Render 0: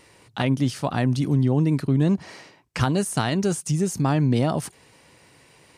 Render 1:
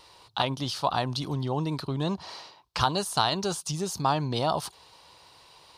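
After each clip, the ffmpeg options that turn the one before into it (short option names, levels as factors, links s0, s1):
-af "equalizer=f=125:t=o:w=1:g=-8,equalizer=f=250:t=o:w=1:g=-11,equalizer=f=500:t=o:w=1:g=-3,equalizer=f=1000:t=o:w=1:g=8,equalizer=f=2000:t=o:w=1:g=-11,equalizer=f=4000:t=o:w=1:g=11,equalizer=f=8000:t=o:w=1:g=-7"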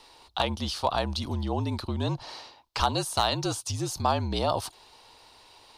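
-af "volume=4.47,asoftclip=hard,volume=0.224,afreqshift=-50"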